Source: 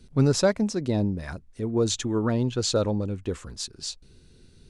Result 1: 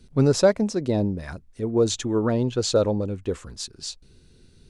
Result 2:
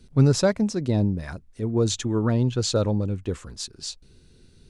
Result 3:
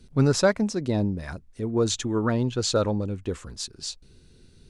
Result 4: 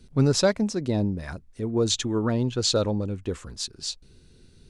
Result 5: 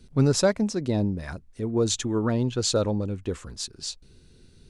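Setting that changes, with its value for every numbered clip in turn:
dynamic bell, frequency: 520 Hz, 120 Hz, 1.4 kHz, 3.8 kHz, 9.9 kHz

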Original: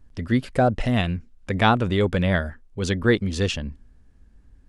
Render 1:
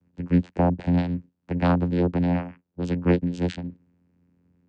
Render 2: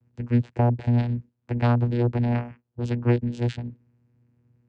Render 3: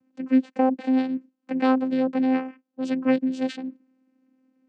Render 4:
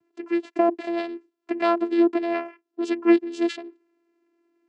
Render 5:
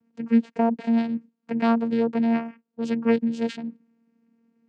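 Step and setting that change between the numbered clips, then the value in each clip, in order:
vocoder, frequency: 88 Hz, 120 Hz, 260 Hz, 340 Hz, 230 Hz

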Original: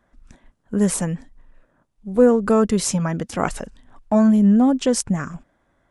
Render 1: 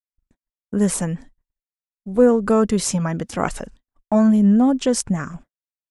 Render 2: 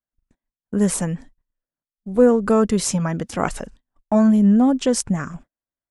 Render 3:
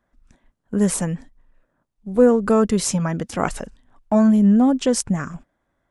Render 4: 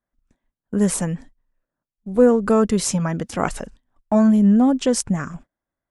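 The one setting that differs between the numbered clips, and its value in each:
gate, range: -54 dB, -34 dB, -7 dB, -22 dB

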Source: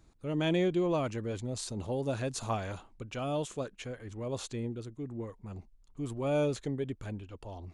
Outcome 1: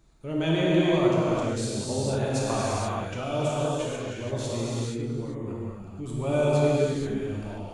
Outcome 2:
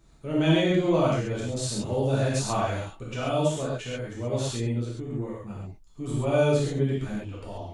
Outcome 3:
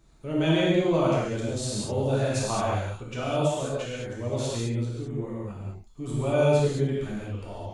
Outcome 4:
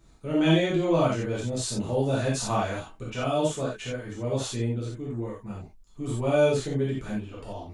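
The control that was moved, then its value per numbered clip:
gated-style reverb, gate: 510 ms, 160 ms, 240 ms, 110 ms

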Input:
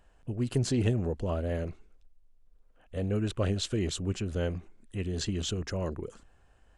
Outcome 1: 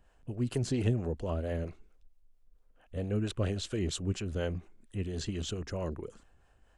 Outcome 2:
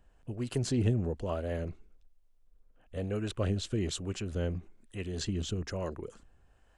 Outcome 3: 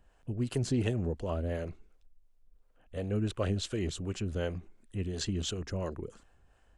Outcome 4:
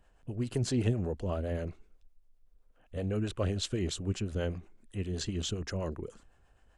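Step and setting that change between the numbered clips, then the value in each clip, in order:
harmonic tremolo, rate: 4.4 Hz, 1.1 Hz, 2.8 Hz, 7.8 Hz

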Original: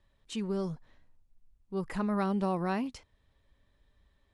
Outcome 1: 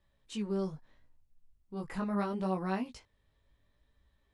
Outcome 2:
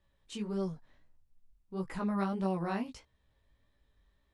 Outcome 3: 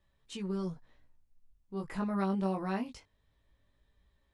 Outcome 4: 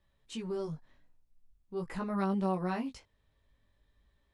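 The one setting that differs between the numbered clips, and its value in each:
chorus, rate: 0.75 Hz, 1.6 Hz, 0.2 Hz, 0.43 Hz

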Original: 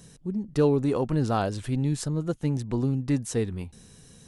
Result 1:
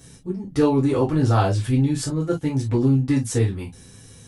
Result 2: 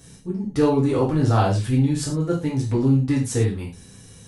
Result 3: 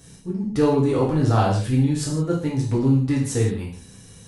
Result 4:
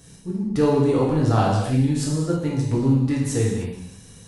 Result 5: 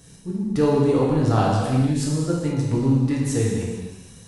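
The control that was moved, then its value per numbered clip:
gated-style reverb, gate: 80 ms, 140 ms, 200 ms, 350 ms, 510 ms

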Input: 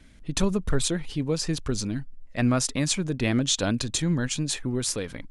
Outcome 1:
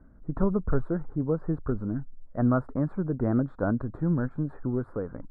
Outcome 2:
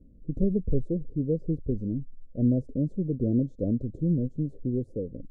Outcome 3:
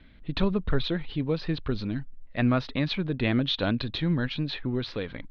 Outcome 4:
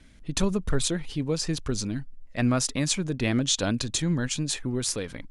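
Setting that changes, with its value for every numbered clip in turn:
elliptic low-pass, frequency: 1.4 kHz, 530 Hz, 4 kHz, 11 kHz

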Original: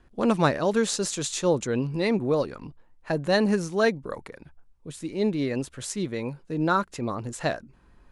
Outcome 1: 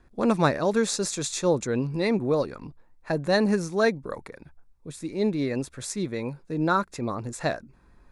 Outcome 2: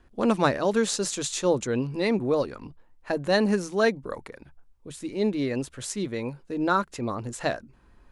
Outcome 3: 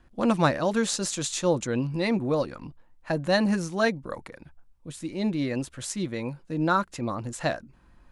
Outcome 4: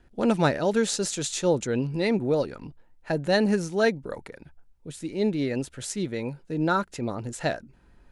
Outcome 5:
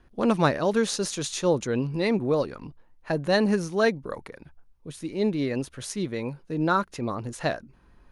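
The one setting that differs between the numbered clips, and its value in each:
band-stop, frequency: 3 kHz, 160 Hz, 420 Hz, 1.1 kHz, 7.6 kHz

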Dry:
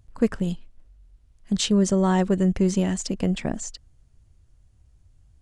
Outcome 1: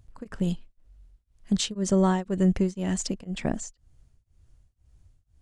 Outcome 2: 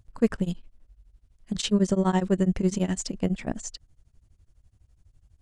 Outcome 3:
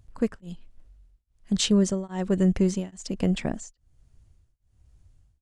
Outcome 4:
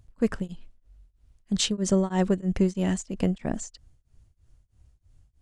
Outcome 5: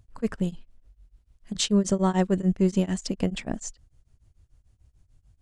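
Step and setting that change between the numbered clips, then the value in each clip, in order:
tremolo of two beating tones, nulls at: 2 Hz, 12 Hz, 1.2 Hz, 3.1 Hz, 6.8 Hz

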